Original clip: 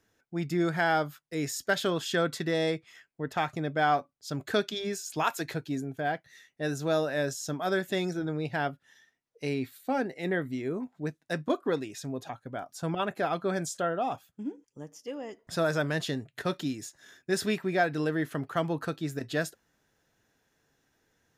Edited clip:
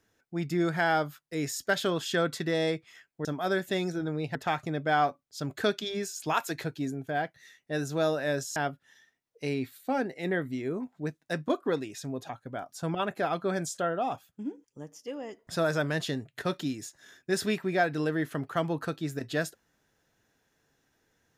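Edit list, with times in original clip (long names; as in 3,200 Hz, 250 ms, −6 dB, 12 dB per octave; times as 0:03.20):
0:07.46–0:08.56: move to 0:03.25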